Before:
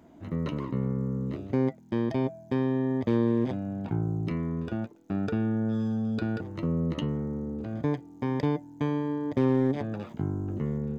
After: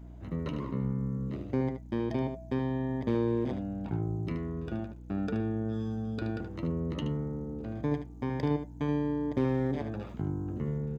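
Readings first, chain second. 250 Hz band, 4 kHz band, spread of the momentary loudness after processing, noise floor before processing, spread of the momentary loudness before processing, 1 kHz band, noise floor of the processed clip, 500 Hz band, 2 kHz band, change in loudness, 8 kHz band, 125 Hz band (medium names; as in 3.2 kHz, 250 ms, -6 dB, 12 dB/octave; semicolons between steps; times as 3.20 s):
-4.0 dB, -3.0 dB, 6 LU, -52 dBFS, 7 LU, -2.5 dB, -46 dBFS, -3.0 dB, -3.0 dB, -3.5 dB, no reading, -2.5 dB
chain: delay 75 ms -8.5 dB; hum 60 Hz, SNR 14 dB; trim -3.5 dB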